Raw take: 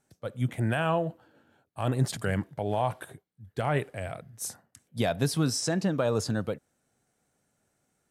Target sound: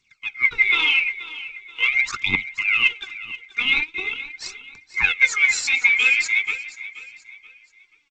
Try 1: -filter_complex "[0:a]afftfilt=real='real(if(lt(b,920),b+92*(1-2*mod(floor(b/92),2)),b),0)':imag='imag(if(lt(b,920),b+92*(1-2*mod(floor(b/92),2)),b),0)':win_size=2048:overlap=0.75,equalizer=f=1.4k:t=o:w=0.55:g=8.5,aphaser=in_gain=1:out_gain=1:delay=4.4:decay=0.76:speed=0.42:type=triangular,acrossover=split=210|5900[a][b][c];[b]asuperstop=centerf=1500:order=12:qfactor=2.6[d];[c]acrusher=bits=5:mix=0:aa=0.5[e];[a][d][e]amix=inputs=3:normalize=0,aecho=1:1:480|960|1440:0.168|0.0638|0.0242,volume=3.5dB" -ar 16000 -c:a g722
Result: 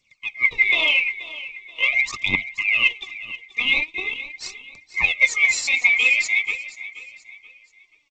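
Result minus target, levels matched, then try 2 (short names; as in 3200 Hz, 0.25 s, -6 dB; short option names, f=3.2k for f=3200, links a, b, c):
500 Hz band +5.5 dB
-filter_complex "[0:a]afftfilt=real='real(if(lt(b,920),b+92*(1-2*mod(floor(b/92),2)),b),0)':imag='imag(if(lt(b,920),b+92*(1-2*mod(floor(b/92),2)),b),0)':win_size=2048:overlap=0.75,equalizer=f=1.4k:t=o:w=0.55:g=8.5,aphaser=in_gain=1:out_gain=1:delay=4.4:decay=0.76:speed=0.42:type=triangular,acrossover=split=210|5900[a][b][c];[b]asuperstop=centerf=610:order=12:qfactor=2.6[d];[c]acrusher=bits=5:mix=0:aa=0.5[e];[a][d][e]amix=inputs=3:normalize=0,aecho=1:1:480|960|1440:0.168|0.0638|0.0242,volume=3.5dB" -ar 16000 -c:a g722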